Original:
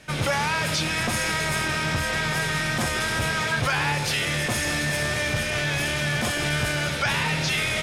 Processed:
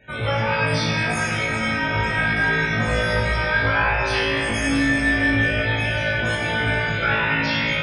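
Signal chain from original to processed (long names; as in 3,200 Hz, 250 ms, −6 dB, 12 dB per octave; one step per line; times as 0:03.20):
0:02.85–0:05.50: frequency shifter −17 Hz
chorus effect 0.33 Hz, delay 16 ms, depth 5.7 ms
spectral peaks only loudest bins 64
flutter between parallel walls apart 3.1 metres, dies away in 0.6 s
dense smooth reverb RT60 3 s, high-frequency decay 0.35×, DRR −1 dB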